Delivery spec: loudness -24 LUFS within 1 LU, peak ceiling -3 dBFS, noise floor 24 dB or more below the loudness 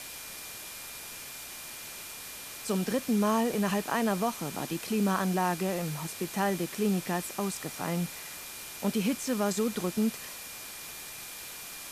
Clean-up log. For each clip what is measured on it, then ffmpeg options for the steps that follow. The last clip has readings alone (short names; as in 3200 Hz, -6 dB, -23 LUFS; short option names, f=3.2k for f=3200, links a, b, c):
steady tone 2400 Hz; tone level -51 dBFS; noise floor -43 dBFS; noise floor target -56 dBFS; loudness -32.0 LUFS; peak -15.5 dBFS; loudness target -24.0 LUFS
-> -af "bandreject=f=2.4k:w=30"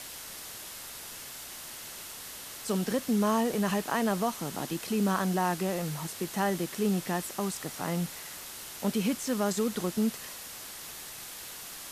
steady tone none; noise floor -43 dBFS; noise floor target -56 dBFS
-> -af "afftdn=nr=13:nf=-43"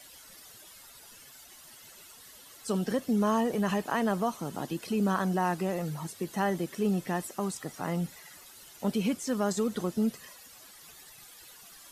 noise floor -52 dBFS; noise floor target -55 dBFS
-> -af "afftdn=nr=6:nf=-52"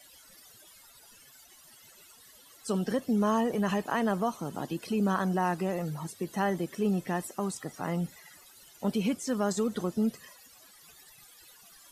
noise floor -56 dBFS; loudness -31.0 LUFS; peak -15.5 dBFS; loudness target -24.0 LUFS
-> -af "volume=7dB"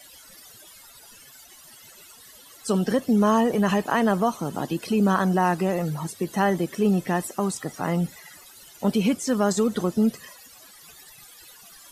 loudness -24.0 LUFS; peak -8.5 dBFS; noise floor -49 dBFS